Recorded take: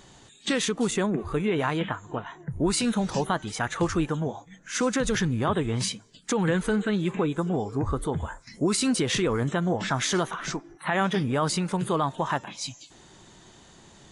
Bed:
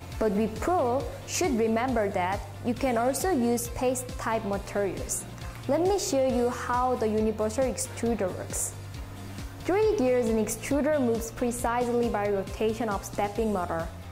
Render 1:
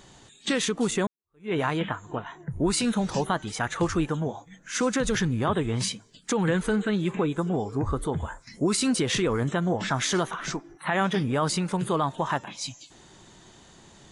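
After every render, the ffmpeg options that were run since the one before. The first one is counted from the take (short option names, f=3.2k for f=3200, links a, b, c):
-filter_complex "[0:a]asplit=2[a][b];[a]atrim=end=1.07,asetpts=PTS-STARTPTS,afade=t=out:st=1.066:d=0.004:c=hsin[c];[b]atrim=start=1.07,asetpts=PTS-STARTPTS,afade=t=in:d=0.45:c=exp[d];[c][d]concat=n=2:v=0:a=1"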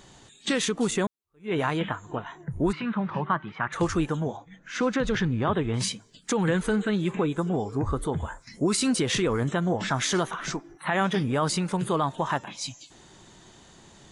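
-filter_complex "[0:a]asplit=3[a][b][c];[a]afade=t=out:st=2.71:d=0.02[d];[b]highpass=150,equalizer=f=150:t=q:w=4:g=5,equalizer=f=270:t=q:w=4:g=-7,equalizer=f=470:t=q:w=4:g=-10,equalizer=f=720:t=q:w=4:g=-6,equalizer=f=1.1k:t=q:w=4:g=7,lowpass=f=2.5k:w=0.5412,lowpass=f=2.5k:w=1.3066,afade=t=in:st=2.71:d=0.02,afade=t=out:st=3.72:d=0.02[e];[c]afade=t=in:st=3.72:d=0.02[f];[d][e][f]amix=inputs=3:normalize=0,asettb=1/sr,asplit=3[g][h][i];[g]atrim=end=4.374[j];[h]atrim=start=4.37:end=5.74,asetpts=PTS-STARTPTS,afade=t=in:d=0.004:c=qsin,afade=t=out:st=1.366:d=0.004:c=qsin,lowpass=3.8k[k];[i]atrim=start=5.736[l];[j][k]acrossfade=d=0.004:c1=hsin:c2=qsin[m];[m][l]acrossfade=d=0.004:c1=qsin:c2=hsin"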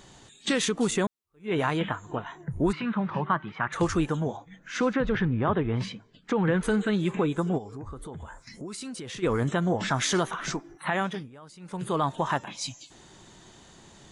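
-filter_complex "[0:a]asettb=1/sr,asplit=3[a][b][c];[a]atrim=end=4.934[d];[b]atrim=start=4.93:end=6.63,asetpts=PTS-STARTPTS,afade=t=in:d=0.004:c=qsin,afade=t=out:st=1.696:d=0.004:c=qsin,lowpass=2.5k[e];[c]atrim=start=6.626[f];[d][e]acrossfade=d=0.004:c1=hsin:c2=qsin[g];[g][f]acrossfade=d=0.004:c1=qsin:c2=hsin,asplit=3[h][i][j];[h]afade=t=out:st=7.57:d=0.02[k];[i]acompressor=threshold=-40dB:ratio=3:attack=3.2:release=140:knee=1:detection=peak,afade=t=in:st=7.57:d=0.02,afade=t=out:st=9.22:d=0.02[l];[j]afade=t=in:st=9.22:d=0.02[m];[k][l][m]amix=inputs=3:normalize=0,asplit=3[n][o][p];[n]atrim=end=11.3,asetpts=PTS-STARTPTS,afade=t=out:st=10.85:d=0.45:silence=0.0707946[q];[o]atrim=start=11.3:end=11.59,asetpts=PTS-STARTPTS,volume=-23dB[r];[p]atrim=start=11.59,asetpts=PTS-STARTPTS,afade=t=in:d=0.45:silence=0.0707946[s];[q][r][s]concat=n=3:v=0:a=1"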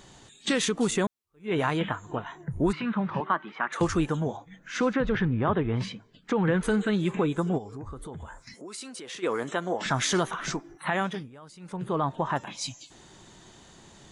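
-filter_complex "[0:a]asettb=1/sr,asplit=3[a][b][c];[a]atrim=end=3.204[d];[b]atrim=start=3.2:end=3.81,asetpts=PTS-STARTPTS,afade=t=in:d=0.004:c=qsin,afade=t=out:st=0.606:d=0.004:c=qsin,highpass=f=230:w=0.5412,highpass=f=230:w=1.3066[e];[c]atrim=start=3.806[f];[d][e]acrossfade=d=0.004:c1=hsin:c2=qsin[g];[g][f]acrossfade=d=0.004:c1=qsin:c2=hsin,asettb=1/sr,asplit=3[h][i][j];[h]atrim=end=8.544[k];[i]atrim=start=8.54:end=9.86,asetpts=PTS-STARTPTS,afade=t=in:d=0.004:c=qsin,afade=t=out:st=1.316:d=0.004:c=qsin,highpass=350[l];[j]atrim=start=9.856[m];[k][l]acrossfade=d=0.004:c1=hsin:c2=qsin[n];[n][m]acrossfade=d=0.004:c1=qsin:c2=hsin,asplit=3[o][p][q];[o]afade=t=out:st=11.72:d=0.02[r];[p]lowpass=f=1.6k:p=1,afade=t=in:st=11.72:d=0.02,afade=t=out:st=12.35:d=0.02[s];[q]afade=t=in:st=12.35:d=0.02[t];[r][s][t]amix=inputs=3:normalize=0"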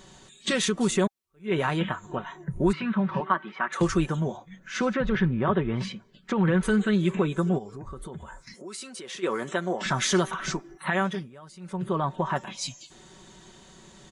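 -af "bandreject=f=800:w=15,aecho=1:1:5.3:0.5"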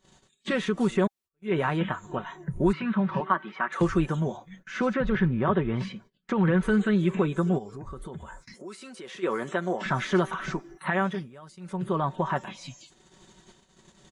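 -filter_complex "[0:a]agate=range=-21dB:threshold=-49dB:ratio=16:detection=peak,acrossover=split=2700[a][b];[b]acompressor=threshold=-48dB:ratio=4:attack=1:release=60[c];[a][c]amix=inputs=2:normalize=0"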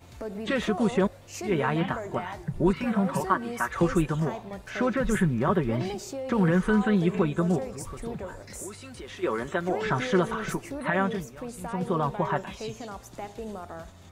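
-filter_complex "[1:a]volume=-10dB[a];[0:a][a]amix=inputs=2:normalize=0"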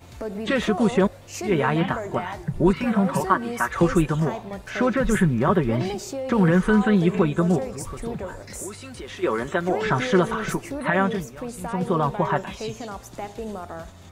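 -af "volume=4.5dB"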